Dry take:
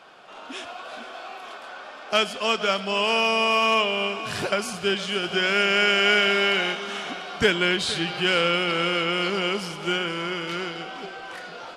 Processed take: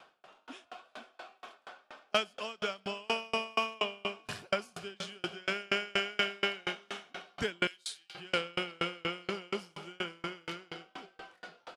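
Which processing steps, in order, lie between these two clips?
0:07.67–0:08.15: first difference
far-end echo of a speakerphone 180 ms, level −21 dB
tremolo with a ramp in dB decaying 4.2 Hz, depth 34 dB
level −4 dB

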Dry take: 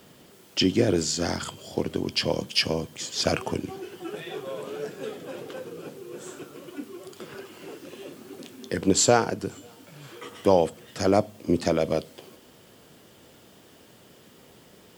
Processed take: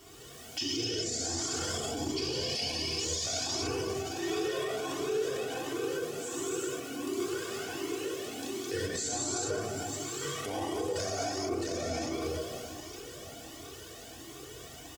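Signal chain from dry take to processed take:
downward compressor, threshold −26 dBFS, peak gain reduction 12.5 dB
parametric band 6,600 Hz +6.5 dB 0.79 octaves
comb filter 2.7 ms, depth 69%
delay that swaps between a low-pass and a high-pass 454 ms, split 1,600 Hz, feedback 62%, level −13 dB
reverb whose tail is shaped and stops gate 460 ms flat, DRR −7.5 dB
brickwall limiter −20 dBFS, peak gain reduction 13 dB
flanger whose copies keep moving one way rising 1.4 Hz

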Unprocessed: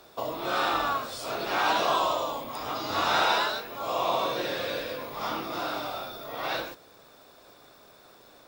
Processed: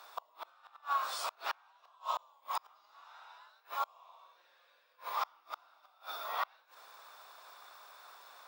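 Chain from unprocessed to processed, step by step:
0:00.49–0:02.19: downward compressor 16 to 1, threshold −30 dBFS, peak gain reduction 10.5 dB
gate with flip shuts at −24 dBFS, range −33 dB
high-pass with resonance 1,000 Hz, resonance Q 2.2
level −2 dB

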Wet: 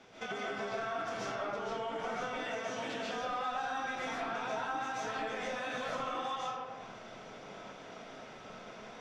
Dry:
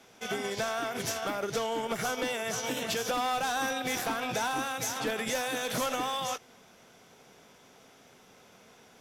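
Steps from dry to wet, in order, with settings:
high-frequency loss of the air 120 metres
comb and all-pass reverb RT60 0.85 s, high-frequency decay 0.6×, pre-delay 100 ms, DRR −8 dB
downward compressor 4 to 1, threshold −41 dBFS, peak gain reduction 18 dB
dynamic equaliser 1,100 Hz, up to +5 dB, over −51 dBFS, Q 0.72

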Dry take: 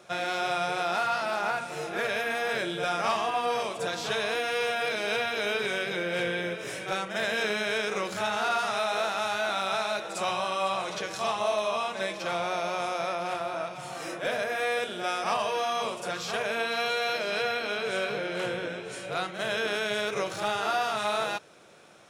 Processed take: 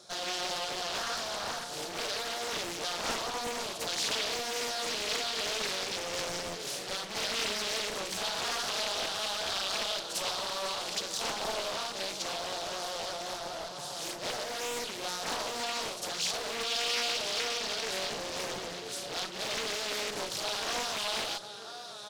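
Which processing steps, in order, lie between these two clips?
repeating echo 993 ms, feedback 51%, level −14 dB
asymmetric clip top −34.5 dBFS
high shelf with overshoot 3,300 Hz +8.5 dB, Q 3
highs frequency-modulated by the lows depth 0.98 ms
level −4.5 dB

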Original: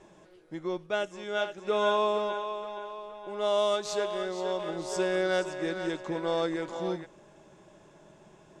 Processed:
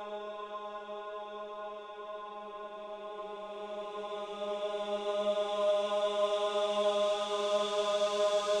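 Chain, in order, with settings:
loose part that buzzes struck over −47 dBFS, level −34 dBFS
extreme stretch with random phases 8.1×, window 1.00 s, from 0:02.70
level −3 dB

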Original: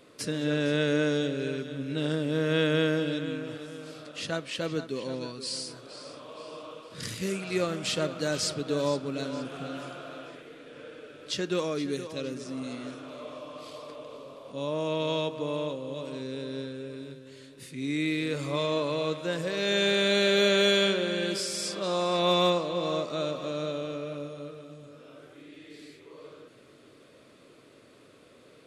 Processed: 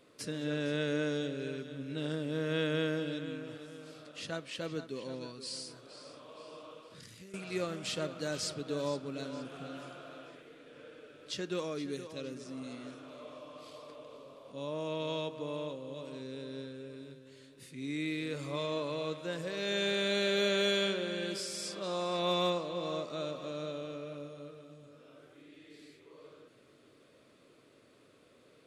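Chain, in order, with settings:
0:06.90–0:07.34: downward compressor 8 to 1, threshold −43 dBFS, peak gain reduction 16 dB
level −7 dB

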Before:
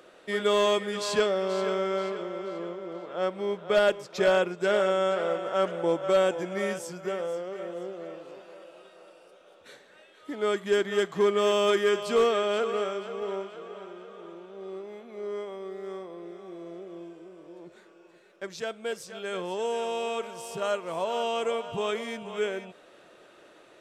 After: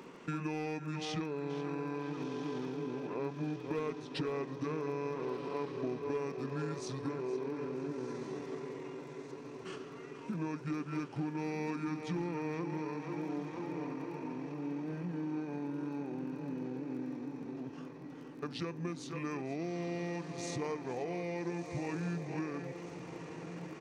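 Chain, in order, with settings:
parametric band 230 Hz +13.5 dB 0.34 octaves
downward compressor 6 to 1, threshold −38 dBFS, peak gain reduction 19.5 dB
feedback delay with all-pass diffusion 1,400 ms, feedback 59%, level −9 dB
surface crackle 15 per second −52 dBFS
pitch shifter −5 semitones
level +2 dB

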